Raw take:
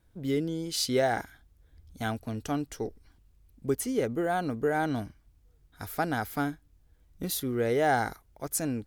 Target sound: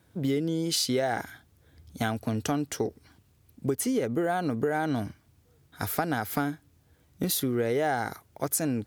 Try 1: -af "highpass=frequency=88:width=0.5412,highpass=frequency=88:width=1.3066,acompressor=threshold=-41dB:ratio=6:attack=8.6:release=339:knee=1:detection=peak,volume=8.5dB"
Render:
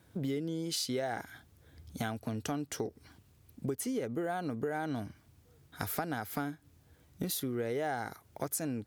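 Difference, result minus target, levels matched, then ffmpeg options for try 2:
downward compressor: peak gain reduction +7.5 dB
-af "highpass=frequency=88:width=0.5412,highpass=frequency=88:width=1.3066,acompressor=threshold=-32dB:ratio=6:attack=8.6:release=339:knee=1:detection=peak,volume=8.5dB"

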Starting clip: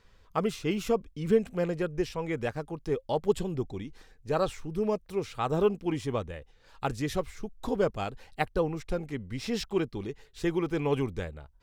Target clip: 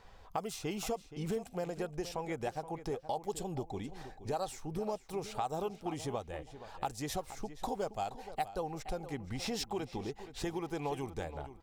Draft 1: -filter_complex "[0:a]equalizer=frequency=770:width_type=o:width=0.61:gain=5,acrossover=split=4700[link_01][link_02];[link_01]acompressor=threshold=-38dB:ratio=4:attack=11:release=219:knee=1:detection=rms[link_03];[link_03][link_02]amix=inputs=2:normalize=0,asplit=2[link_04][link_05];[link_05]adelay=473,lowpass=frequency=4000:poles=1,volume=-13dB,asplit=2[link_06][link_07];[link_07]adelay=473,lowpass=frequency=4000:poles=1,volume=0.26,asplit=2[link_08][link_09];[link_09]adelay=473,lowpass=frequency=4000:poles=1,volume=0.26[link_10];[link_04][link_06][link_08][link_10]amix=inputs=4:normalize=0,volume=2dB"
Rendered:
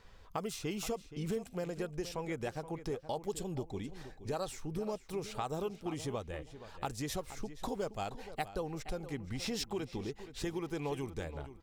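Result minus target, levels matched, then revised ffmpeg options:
1,000 Hz band −3.5 dB
-filter_complex "[0:a]equalizer=frequency=770:width_type=o:width=0.61:gain=14.5,acrossover=split=4700[link_01][link_02];[link_01]acompressor=threshold=-38dB:ratio=4:attack=11:release=219:knee=1:detection=rms[link_03];[link_03][link_02]amix=inputs=2:normalize=0,asplit=2[link_04][link_05];[link_05]adelay=473,lowpass=frequency=4000:poles=1,volume=-13dB,asplit=2[link_06][link_07];[link_07]adelay=473,lowpass=frequency=4000:poles=1,volume=0.26,asplit=2[link_08][link_09];[link_09]adelay=473,lowpass=frequency=4000:poles=1,volume=0.26[link_10];[link_04][link_06][link_08][link_10]amix=inputs=4:normalize=0,volume=2dB"

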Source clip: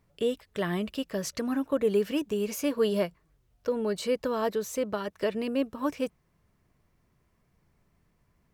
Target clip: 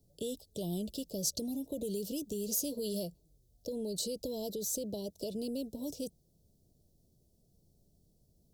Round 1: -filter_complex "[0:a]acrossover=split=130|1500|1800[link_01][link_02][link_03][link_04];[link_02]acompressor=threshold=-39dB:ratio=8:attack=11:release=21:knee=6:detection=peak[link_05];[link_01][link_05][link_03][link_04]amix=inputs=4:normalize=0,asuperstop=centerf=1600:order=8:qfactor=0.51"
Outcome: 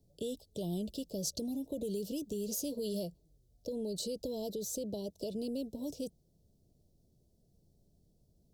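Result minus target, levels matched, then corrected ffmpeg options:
8,000 Hz band −3.0 dB
-filter_complex "[0:a]acrossover=split=130|1500|1800[link_01][link_02][link_03][link_04];[link_02]acompressor=threshold=-39dB:ratio=8:attack=11:release=21:knee=6:detection=peak[link_05];[link_01][link_05][link_03][link_04]amix=inputs=4:normalize=0,asuperstop=centerf=1600:order=8:qfactor=0.51,highshelf=frequency=5800:gain=7"

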